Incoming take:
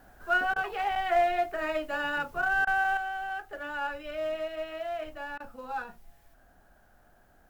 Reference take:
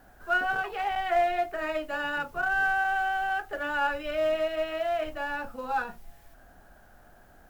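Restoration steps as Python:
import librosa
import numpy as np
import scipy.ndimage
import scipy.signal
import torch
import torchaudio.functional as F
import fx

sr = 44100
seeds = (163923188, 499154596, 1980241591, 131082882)

y = fx.fix_interpolate(x, sr, at_s=(0.54, 2.65, 5.38), length_ms=20.0)
y = fx.gain(y, sr, db=fx.steps((0.0, 0.0), (2.97, 6.0)))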